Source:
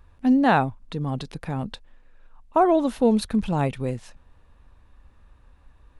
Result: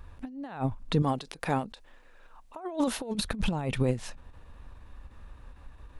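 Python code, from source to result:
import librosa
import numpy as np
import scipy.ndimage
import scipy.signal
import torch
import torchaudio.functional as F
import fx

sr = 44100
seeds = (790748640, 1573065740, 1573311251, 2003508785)

y = fx.bass_treble(x, sr, bass_db=-11, treble_db=3, at=(1.02, 3.15))
y = fx.over_compress(y, sr, threshold_db=-27.0, ratio=-0.5)
y = fx.end_taper(y, sr, db_per_s=180.0)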